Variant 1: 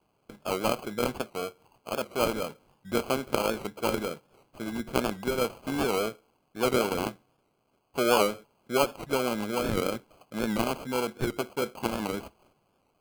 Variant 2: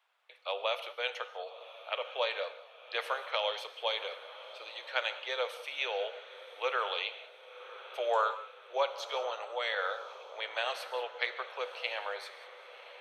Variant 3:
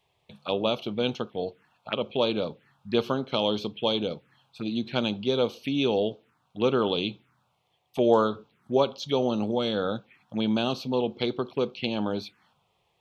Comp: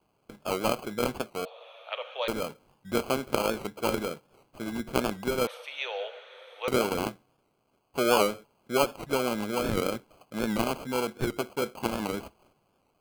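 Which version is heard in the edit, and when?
1
1.45–2.28 from 2
5.47–6.68 from 2
not used: 3

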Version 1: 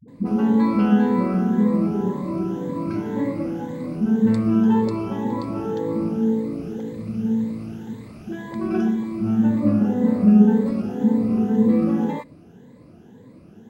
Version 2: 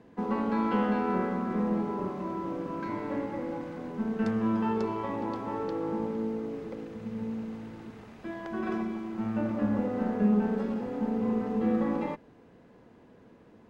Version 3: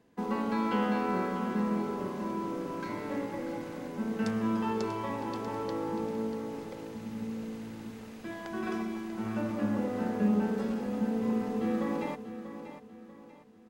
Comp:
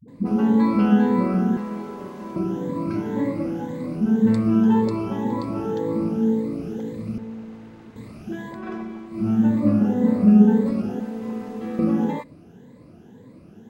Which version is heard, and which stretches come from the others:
1
1.57–2.36 from 3
7.18–7.96 from 2
8.56–9.12 from 2, crossfade 0.16 s
11–11.79 from 3

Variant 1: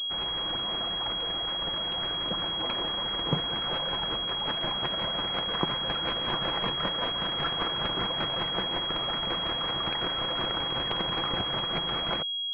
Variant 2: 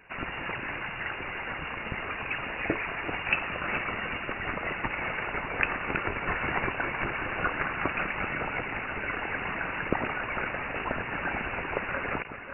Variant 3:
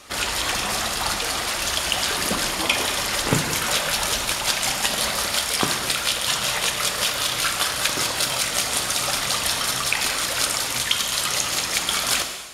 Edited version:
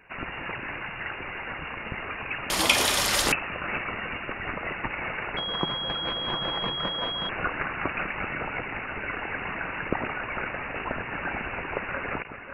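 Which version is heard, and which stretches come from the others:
2
2.5–3.32 from 3
5.37–7.29 from 1

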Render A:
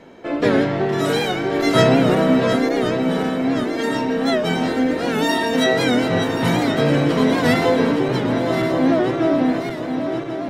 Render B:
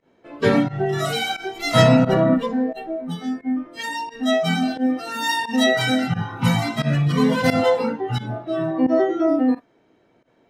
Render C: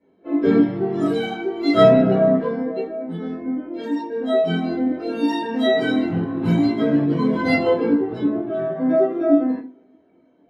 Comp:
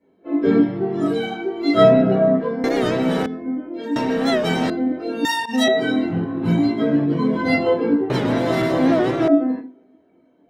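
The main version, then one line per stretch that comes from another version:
C
2.64–3.26 from A
3.96–4.7 from A
5.25–5.68 from B
8.1–9.28 from A

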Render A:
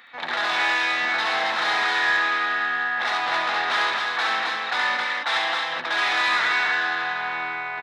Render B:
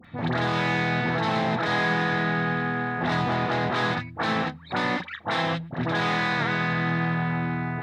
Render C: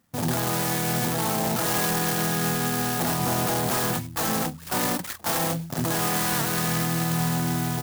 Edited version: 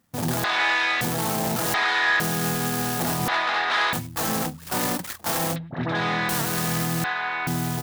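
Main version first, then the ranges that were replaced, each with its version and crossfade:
C
0.44–1.01 from A
1.74–2.2 from A
3.28–3.93 from A
5.56–6.29 from B
7.04–7.47 from A

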